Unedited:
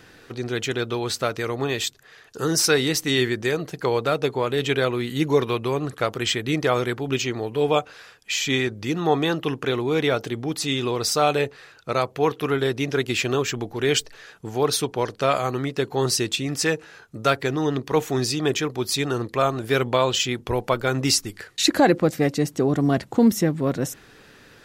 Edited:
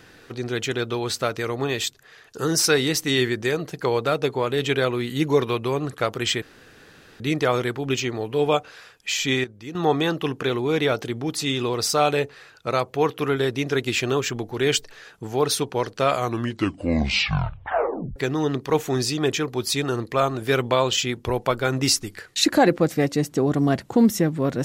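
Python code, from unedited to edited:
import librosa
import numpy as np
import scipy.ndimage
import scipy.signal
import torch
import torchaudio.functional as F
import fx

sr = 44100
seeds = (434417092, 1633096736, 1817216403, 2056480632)

y = fx.edit(x, sr, fx.insert_room_tone(at_s=6.42, length_s=0.78),
    fx.clip_gain(start_s=8.66, length_s=0.31, db=-10.5),
    fx.tape_stop(start_s=15.38, length_s=2.0), tone=tone)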